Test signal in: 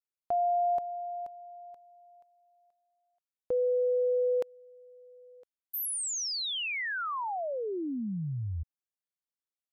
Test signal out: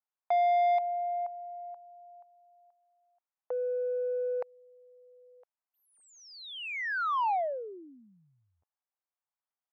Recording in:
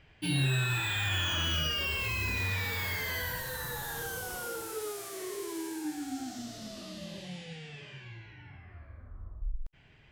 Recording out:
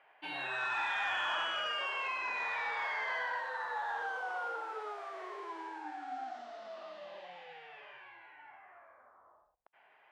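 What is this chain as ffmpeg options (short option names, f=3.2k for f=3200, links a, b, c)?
-filter_complex "[0:a]highpass=f=790:t=q:w=1.8,adynamicsmooth=sensitivity=0.5:basefreq=1.5k,asplit=2[a][b];[b]highpass=f=720:p=1,volume=10dB,asoftclip=type=tanh:threshold=-21.5dB[c];[a][c]amix=inputs=2:normalize=0,lowpass=f=5.4k:p=1,volume=-6dB"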